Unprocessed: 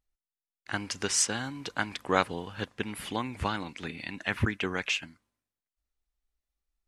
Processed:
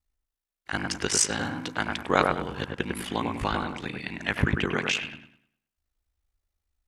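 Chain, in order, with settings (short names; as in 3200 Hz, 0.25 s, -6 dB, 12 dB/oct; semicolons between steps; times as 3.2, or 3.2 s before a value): ring modulator 27 Hz; dark delay 0.101 s, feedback 32%, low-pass 2100 Hz, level -3 dB; gain +5.5 dB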